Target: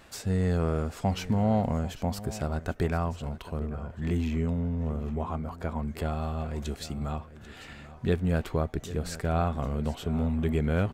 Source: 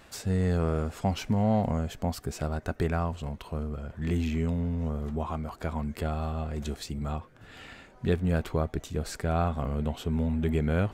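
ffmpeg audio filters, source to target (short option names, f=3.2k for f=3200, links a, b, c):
-filter_complex "[0:a]aecho=1:1:791:0.168,asettb=1/sr,asplit=3[a][b][c];[a]atrim=end=3.594[d];[b]atrim=start=3.59:end=5.88,asetpts=PTS-STARTPTS,afade=t=in:d=0.004:c=qsin,afade=t=out:st=2.286:d=0.004:c=qsin,adynamicequalizer=threshold=0.00282:dfrequency=2000:dqfactor=0.7:tfrequency=2000:tqfactor=0.7:attack=5:release=100:ratio=0.375:range=3:mode=cutabove:tftype=highshelf[e];[c]atrim=start=5.876[f];[d][e]acrossfade=d=0.004:c1=hsin:c2=qsin[g];[g][f]acrossfade=d=0.004:c1=qsin:c2=hsin"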